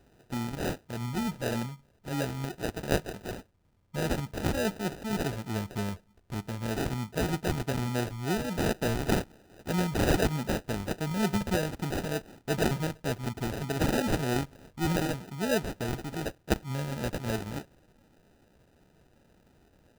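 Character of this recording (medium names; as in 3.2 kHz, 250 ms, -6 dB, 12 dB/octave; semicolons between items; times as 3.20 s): phasing stages 2, 3.3 Hz, lowest notch 430–1100 Hz; aliases and images of a low sample rate 1.1 kHz, jitter 0%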